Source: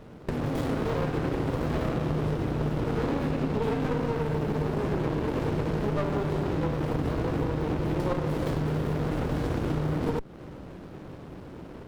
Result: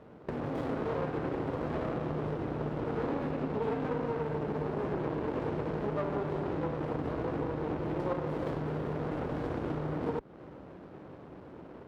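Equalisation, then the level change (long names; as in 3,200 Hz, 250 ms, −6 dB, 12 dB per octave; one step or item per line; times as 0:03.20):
high-pass filter 42 Hz
low-pass filter 1,100 Hz 6 dB per octave
low-shelf EQ 260 Hz −11 dB
0.0 dB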